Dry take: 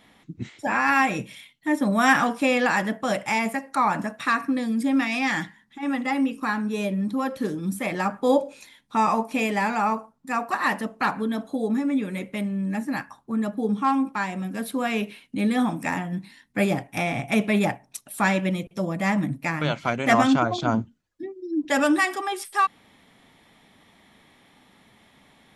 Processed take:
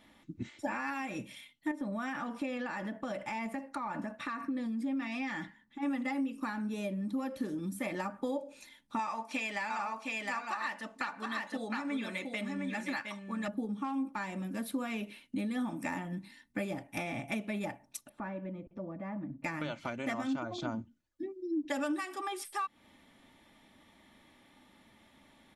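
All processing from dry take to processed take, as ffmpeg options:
ffmpeg -i in.wav -filter_complex "[0:a]asettb=1/sr,asplit=3[link_01][link_02][link_03];[link_01]atrim=end=1.714[link_04];[link_02]atrim=start=1.71:end=5.82,asetpts=PTS-STARTPTS,afade=type=in:duration=0.004:curve=qsin,afade=type=out:start_time=4.106:duration=0.004:curve=qsin,highshelf=frequency=5700:gain=-11.5,acompressor=threshold=-28dB:ratio=4:attack=3.2:release=140:knee=1:detection=peak[link_05];[link_03]atrim=start=5.816[link_06];[link_04][link_05]acrossfade=duration=0.004:curve1=hsin:curve2=qsin[link_07];[link_07][link_06]acrossfade=duration=0.004:curve1=qsin:curve2=hsin,asettb=1/sr,asplit=3[link_08][link_09][link_10];[link_08]atrim=end=8.994[link_11];[link_09]atrim=start=8.99:end=13.48,asetpts=PTS-STARTPTS,afade=type=in:duration=0.004:curve=qsin,afade=type=out:start_time=4.486:duration=0.004:curve=qsin,lowpass=6700,tiltshelf=frequency=660:gain=-8.5,aecho=1:1:712:0.501,atrim=end_sample=198009[link_12];[link_10]atrim=start=13.476[link_13];[link_11][link_12]acrossfade=duration=0.004:curve1=hsin:curve2=qsin[link_14];[link_14][link_13]acrossfade=duration=0.004:curve1=qsin:curve2=hsin,asettb=1/sr,asplit=3[link_15][link_16][link_17];[link_15]atrim=end=18.094[link_18];[link_16]atrim=start=18.09:end=19.44,asetpts=PTS-STARTPTS,afade=type=in:duration=0.004:curve=qsin,afade=type=out:start_time=1.346:duration=0.004:curve=qsin,lowpass=1300,acompressor=threshold=-39dB:ratio=2:attack=3.2:release=140:knee=1:detection=peak[link_19];[link_17]atrim=start=19.436[link_20];[link_18][link_19]acrossfade=duration=0.004:curve1=hsin:curve2=qsin[link_21];[link_21][link_20]acrossfade=duration=0.004:curve1=qsin:curve2=hsin,acompressor=threshold=-27dB:ratio=10,lowshelf=frequency=380:gain=2.5,aecho=1:1:3.4:0.41,volume=-7dB" out.wav

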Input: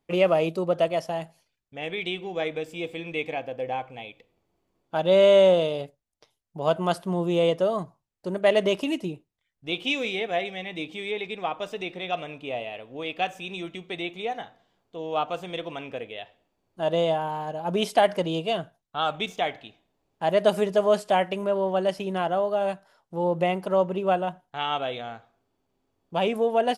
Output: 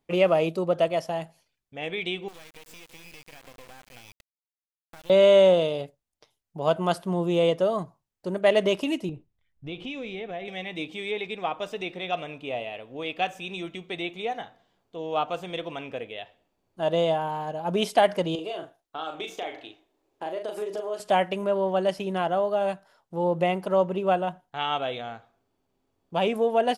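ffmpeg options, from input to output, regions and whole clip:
ffmpeg -i in.wav -filter_complex "[0:a]asettb=1/sr,asplit=3[link_01][link_02][link_03];[link_01]atrim=end=2.284[link_04];[link_02]atrim=start=2.28:end=5.1,asetpts=PTS-STARTPTS,afade=type=in:duration=0.004:curve=qsin,afade=type=out:start_time=2.816:duration=0.004:curve=qsin,tiltshelf=frequency=1100:gain=-6.5,acompressor=threshold=-40dB:ratio=20:attack=3.2:release=140:knee=1:detection=peak,acrusher=bits=5:dc=4:mix=0:aa=0.000001[link_05];[link_03]atrim=start=5.096[link_06];[link_04][link_05]acrossfade=duration=0.004:curve1=hsin:curve2=qsin[link_07];[link_07][link_06]acrossfade=duration=0.004:curve1=qsin:curve2=hsin,asettb=1/sr,asplit=3[link_08][link_09][link_10];[link_08]atrim=end=9.094[link_11];[link_09]atrim=start=9.09:end=10.48,asetpts=PTS-STARTPTS,afade=type=in:duration=0.004:curve=qsin,afade=type=out:start_time=1.386:duration=0.004:curve=qsin,aemphasis=mode=reproduction:type=bsi,acompressor=threshold=-34dB:ratio=3:attack=3.2:release=140:knee=1:detection=peak[link_12];[link_10]atrim=start=10.476[link_13];[link_11][link_12]acrossfade=duration=0.004:curve1=hsin:curve2=qsin[link_14];[link_14][link_13]acrossfade=duration=0.004:curve1=qsin:curve2=hsin,asettb=1/sr,asplit=3[link_15][link_16][link_17];[link_15]atrim=end=18.354[link_18];[link_16]atrim=start=18.35:end=21,asetpts=PTS-STARTPTS,afade=type=in:duration=0.004:curve=qsin,afade=type=out:start_time=2.646:duration=0.004:curve=qsin,lowshelf=frequency=250:width_type=q:width=3:gain=-7.5,acompressor=threshold=-30dB:ratio=6:attack=3.2:release=140:knee=1:detection=peak,asplit=2[link_19][link_20];[link_20]adelay=38,volume=-5.5dB[link_21];[link_19][link_21]amix=inputs=2:normalize=0,atrim=end_sample=116865[link_22];[link_17]atrim=start=20.996[link_23];[link_18][link_22]acrossfade=duration=0.004:curve1=hsin:curve2=qsin[link_24];[link_24][link_23]acrossfade=duration=0.004:curve1=qsin:curve2=hsin" out.wav

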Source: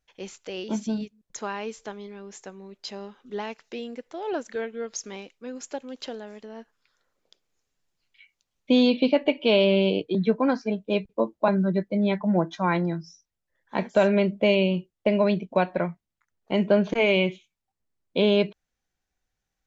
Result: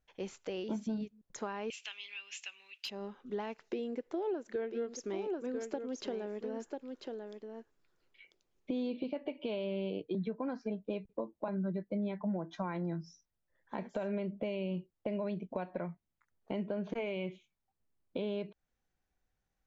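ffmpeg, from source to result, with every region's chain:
ffmpeg -i in.wav -filter_complex "[0:a]asettb=1/sr,asplit=3[link_01][link_02][link_03];[link_01]atrim=end=1.704[link_04];[link_02]atrim=start=1.7:end=2.9,asetpts=PTS-STARTPTS,afade=type=in:duration=0.004:curve=qsin,afade=type=out:start_time=1.196:duration=0.004:curve=qsin,highpass=frequency=2700:width_type=q:width=11,asoftclip=type=hard:threshold=-25dB,acontrast=36[link_05];[link_03]atrim=start=2.896[link_06];[link_04][link_05]acrossfade=duration=0.004:curve1=hsin:curve2=qsin[link_07];[link_07][link_06]acrossfade=duration=0.004:curve1=qsin:curve2=hsin,asettb=1/sr,asplit=3[link_08][link_09][link_10];[link_08]atrim=end=3.624[link_11];[link_09]atrim=start=3.62:end=9.04,asetpts=PTS-STARTPTS,afade=type=in:duration=0.004:curve=qsin,afade=type=out:start_time=5.416:duration=0.004:curve=qsin,equalizer=frequency=360:width=2.6:gain=10,aecho=1:1:993:0.376,atrim=end_sample=239022[link_12];[link_10]atrim=start=9.036[link_13];[link_11][link_12]acrossfade=duration=0.004:curve1=hsin:curve2=qsin[link_14];[link_14][link_13]acrossfade=duration=0.004:curve1=qsin:curve2=hsin,alimiter=limit=-19.5dB:level=0:latency=1:release=274,acompressor=threshold=-35dB:ratio=3,highshelf=frequency=2200:gain=-9" out.wav

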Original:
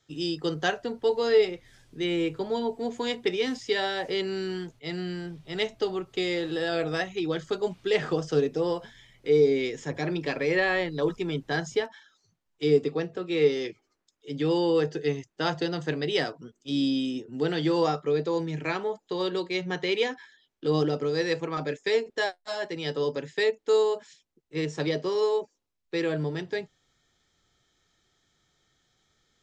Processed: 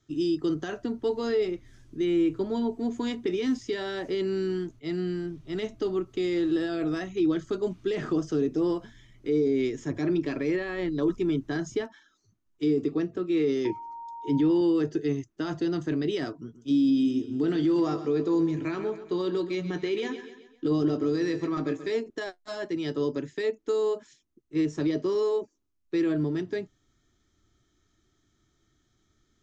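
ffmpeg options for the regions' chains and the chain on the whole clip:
ffmpeg -i in.wav -filter_complex "[0:a]asettb=1/sr,asplit=3[link_01][link_02][link_03];[link_01]atrim=end=13.654[link_04];[link_02]atrim=start=13.65:end=14.61,asetpts=PTS-STARTPTS,afade=type=in:duration=0.004:curve=qsin,afade=type=out:start_time=0.956:duration=0.004:curve=qsin,lowpass=frequency=3800:poles=1,acontrast=75,aeval=exprs='val(0)+0.0224*sin(2*PI*930*n/s)':channel_layout=same[link_05];[link_03]atrim=start=14.606[link_06];[link_04][link_05]acrossfade=duration=0.004:curve1=hsin:curve2=qsin[link_07];[link_07][link_06]acrossfade=duration=0.004:curve1=qsin:curve2=hsin,asettb=1/sr,asplit=3[link_08][link_09][link_10];[link_08]atrim=end=16.364[link_11];[link_09]atrim=start=16.36:end=21.92,asetpts=PTS-STARTPTS,afade=type=in:duration=0.004:curve=qsin,afade=type=out:start_time=5.556:duration=0.004:curve=qsin,asplit=2[link_12][link_13];[link_13]adelay=18,volume=-12dB[link_14];[link_12][link_14]amix=inputs=2:normalize=0,atrim=end_sample=245196,aecho=1:1:132|264|396|528:0.2|0.0938|0.0441|0.0207,atrim=end_sample=245196[link_15];[link_10]atrim=start=21.916[link_16];[link_11][link_15]acrossfade=duration=0.004:curve1=hsin:curve2=qsin[link_17];[link_17][link_16]acrossfade=duration=0.004:curve1=qsin:curve2=hsin,equalizer=frequency=160:width_type=o:width=0.33:gain=-9,equalizer=frequency=315:width_type=o:width=0.33:gain=5,equalizer=frequency=500:width_type=o:width=0.33:gain=-12,equalizer=frequency=800:width_type=o:width=0.33:gain=-8,equalizer=frequency=1250:width_type=o:width=0.33:gain=3,equalizer=frequency=6300:width_type=o:width=0.33:gain=6,alimiter=limit=-21.5dB:level=0:latency=1:release=16,tiltshelf=frequency=770:gain=7" out.wav

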